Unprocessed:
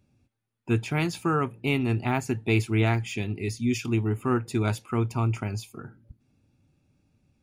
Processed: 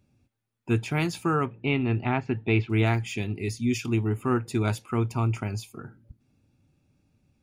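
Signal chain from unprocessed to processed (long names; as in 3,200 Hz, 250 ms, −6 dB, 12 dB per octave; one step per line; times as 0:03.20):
0:01.46–0:02.70: low-pass filter 3,500 Hz 24 dB per octave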